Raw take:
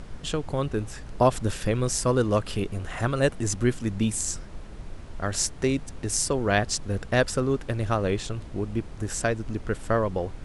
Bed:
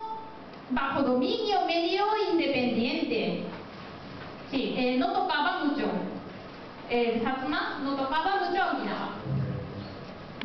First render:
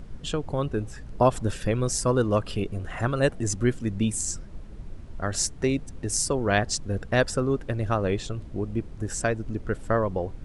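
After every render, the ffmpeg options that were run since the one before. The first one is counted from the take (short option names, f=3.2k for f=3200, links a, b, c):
-af "afftdn=nr=8:nf=-41"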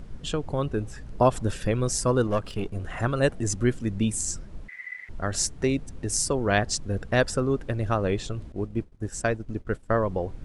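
-filter_complex "[0:a]asettb=1/sr,asplit=3[a][b][c];[a]atrim=end=2.274[d];[b]atrim=start=2.27:end=2.75,asetpts=PTS-STARTPTS,afade=t=in:d=0.004:c=qsin,afade=t=out:st=0.476:d=0.004:c=qsin,aeval=exprs='if(lt(val(0),0),0.447*val(0),val(0))':c=same[e];[c]atrim=start=2.746[f];[d][e]acrossfade=d=0.004:c1=hsin:c2=qsin[g];[g][f]acrossfade=d=0.004:c1=qsin:c2=hsin,asettb=1/sr,asplit=3[h][i][j];[h]atrim=end=4.684[k];[i]atrim=start=4.68:end=5.09,asetpts=PTS-STARTPTS,afade=t=in:d=0.004:c=qsin,afade=t=out:st=0.406:d=0.004:c=qsin,aeval=exprs='val(0)*sin(2*PI*2000*n/s)':c=same[l];[j]atrim=start=5.086[m];[k][l]acrossfade=d=0.004:c1=hsin:c2=qsin[n];[n][m]acrossfade=d=0.004:c1=qsin:c2=hsin,asettb=1/sr,asplit=3[o][p][q];[o]atrim=end=8.524[r];[p]atrim=start=8.52:end=10.02,asetpts=PTS-STARTPTS,afade=t=in:d=0.004:c=qsin,afade=t=out:st=1.496:d=0.004:c=qsin,agate=range=-33dB:threshold=-28dB:ratio=3:release=100:detection=peak[s];[q]atrim=start=10.016[t];[r][s]acrossfade=d=0.004:c1=hsin:c2=qsin[u];[u][t]acrossfade=d=0.004:c1=qsin:c2=hsin"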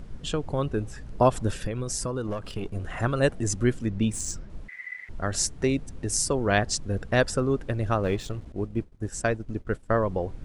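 -filter_complex "[0:a]asettb=1/sr,asplit=3[a][b][c];[a]atrim=end=1.654[d];[b]atrim=start=1.65:end=2.76,asetpts=PTS-STARTPTS,afade=t=in:d=0.004:c=qsin,afade=t=out:st=1.106:d=0.004:c=qsin,acompressor=threshold=-25dB:ratio=12:attack=3.2:release=140:knee=1:detection=peak[e];[c]atrim=start=2.756[f];[d][e]acrossfade=d=0.004:c1=hsin:c2=qsin[g];[g][f]acrossfade=d=0.004:c1=qsin:c2=hsin,asettb=1/sr,asplit=3[h][i][j];[h]atrim=end=3.864[k];[i]atrim=start=3.86:end=4.5,asetpts=PTS-STARTPTS,afade=t=in:d=0.004:c=qsin,afade=t=out:st=0.636:d=0.004:c=qsin,adynamicsmooth=sensitivity=4:basefreq=6.4k[l];[j]atrim=start=4.496[m];[k][l]acrossfade=d=0.004:c1=hsin:c2=qsin[n];[n][m]acrossfade=d=0.004:c1=qsin:c2=hsin,asettb=1/sr,asplit=3[o][p][q];[o]atrim=end=8.034[r];[p]atrim=start=8.03:end=8.47,asetpts=PTS-STARTPTS,afade=t=in:d=0.004:c=qsin,afade=t=out:st=0.436:d=0.004:c=qsin,aeval=exprs='sgn(val(0))*max(abs(val(0))-0.00531,0)':c=same[s];[q]atrim=start=8.466[t];[r][s]acrossfade=d=0.004:c1=hsin:c2=qsin[u];[u][t]acrossfade=d=0.004:c1=qsin:c2=hsin"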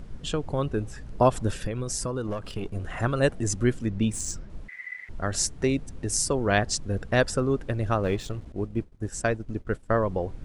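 -af anull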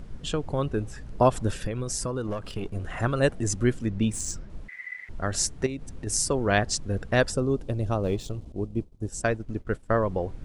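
-filter_complex "[0:a]asettb=1/sr,asplit=3[a][b][c];[a]atrim=end=5.664[d];[b]atrim=start=5.66:end=6.07,asetpts=PTS-STARTPTS,afade=t=in:d=0.004:c=qsin,afade=t=out:st=0.406:d=0.004:c=qsin,acompressor=threshold=-30dB:ratio=5:attack=3.2:release=140:knee=1:detection=peak[e];[c]atrim=start=6.066[f];[d][e]acrossfade=d=0.004:c1=hsin:c2=qsin[g];[g][f]acrossfade=d=0.004:c1=qsin:c2=hsin,asettb=1/sr,asplit=3[h][i][j];[h]atrim=end=7.324[k];[i]atrim=start=7.32:end=9.23,asetpts=PTS-STARTPTS,afade=t=in:d=0.004:c=qsin,afade=t=out:st=1.906:d=0.004:c=qsin,equalizer=f=1.7k:t=o:w=1.1:g=-12.5[l];[j]atrim=start=9.226[m];[k][l]acrossfade=d=0.004:c1=hsin:c2=qsin[n];[n][m]acrossfade=d=0.004:c1=qsin:c2=hsin"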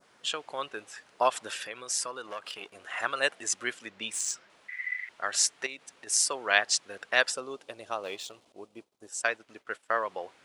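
-af "highpass=840,adynamicequalizer=threshold=0.00501:dfrequency=2800:dqfactor=0.84:tfrequency=2800:tqfactor=0.84:attack=5:release=100:ratio=0.375:range=3:mode=boostabove:tftype=bell"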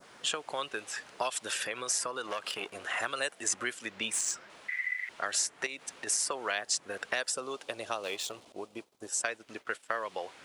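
-filter_complex "[0:a]asplit=2[a][b];[b]alimiter=limit=-16.5dB:level=0:latency=1:release=233,volume=3dB[c];[a][c]amix=inputs=2:normalize=0,acrossover=split=590|2200|6600[d][e][f][g];[d]acompressor=threshold=-41dB:ratio=4[h];[e]acompressor=threshold=-37dB:ratio=4[i];[f]acompressor=threshold=-39dB:ratio=4[j];[g]acompressor=threshold=-32dB:ratio=4[k];[h][i][j][k]amix=inputs=4:normalize=0"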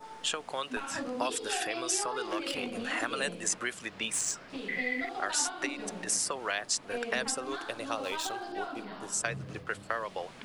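-filter_complex "[1:a]volume=-11.5dB[a];[0:a][a]amix=inputs=2:normalize=0"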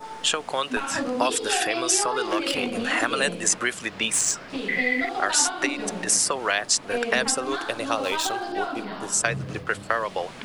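-af "volume=9dB"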